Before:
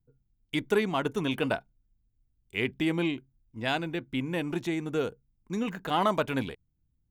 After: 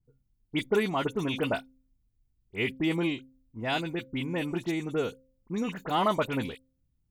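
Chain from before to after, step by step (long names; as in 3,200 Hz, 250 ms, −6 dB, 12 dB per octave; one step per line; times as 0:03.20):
notch filter 1,600 Hz, Q 14
hum removal 262.2 Hz, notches 2
all-pass dispersion highs, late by 52 ms, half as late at 2,800 Hz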